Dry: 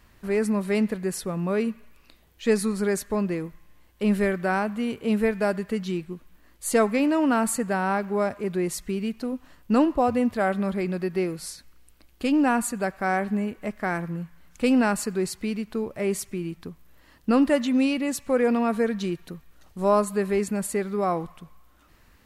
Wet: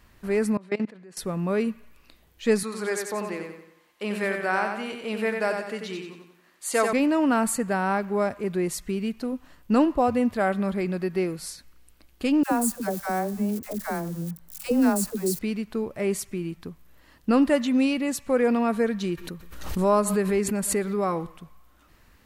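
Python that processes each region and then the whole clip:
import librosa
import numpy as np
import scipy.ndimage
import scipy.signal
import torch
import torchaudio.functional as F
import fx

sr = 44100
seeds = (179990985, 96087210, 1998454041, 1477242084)

y = fx.chain(x, sr, fx.level_steps(step_db=22),
    fx.bandpass_edges(low_hz=200.0, high_hz=5000.0), at=(0.57, 1.17))
y = fx.chain(y, sr, fx.weighting(curve='A'),
    fx.echo_feedback(ms=91, feedback_pct=43, wet_db=-5), at=(2.63, 6.93))
y = fx.chain(y, sr, fx.crossing_spikes(level_db=-27.5),
    fx.peak_eq(hz=2300.0, db=-9.0, octaves=1.9),
    fx.dispersion(late='lows', ms=96.0, hz=610.0), at=(12.43, 15.39))
y = fx.chain(y, sr, fx.notch(hz=700.0, q=7.6),
    fx.echo_single(ms=120, db=-23.5),
    fx.pre_swell(db_per_s=55.0), at=(19.09, 21.37))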